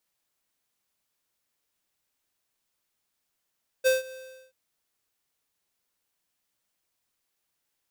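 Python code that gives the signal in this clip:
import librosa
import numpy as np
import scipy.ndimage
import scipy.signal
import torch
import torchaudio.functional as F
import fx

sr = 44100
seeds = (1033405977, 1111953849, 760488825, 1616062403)

y = fx.adsr_tone(sr, wave='square', hz=520.0, attack_ms=27.0, decay_ms=156.0, sustain_db=-22.0, held_s=0.28, release_ms=403.0, level_db=-19.5)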